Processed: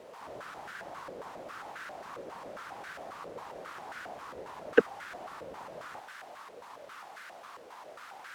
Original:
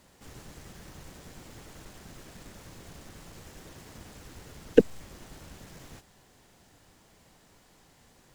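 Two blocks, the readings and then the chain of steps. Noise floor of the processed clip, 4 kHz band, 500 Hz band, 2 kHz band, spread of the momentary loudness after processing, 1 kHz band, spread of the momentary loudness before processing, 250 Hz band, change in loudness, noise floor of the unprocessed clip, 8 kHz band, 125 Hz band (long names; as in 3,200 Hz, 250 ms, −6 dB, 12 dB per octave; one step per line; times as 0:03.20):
−50 dBFS, −0.5 dB, −3.0 dB, +9.5 dB, 6 LU, +12.0 dB, 8 LU, −8.5 dB, −14.5 dB, −61 dBFS, −6.5 dB, −12.5 dB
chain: in parallel at −9 dB: bit-depth reduction 6 bits, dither triangular
on the sum: band-pass on a step sequencer 7.4 Hz 510–1,500 Hz
level +13.5 dB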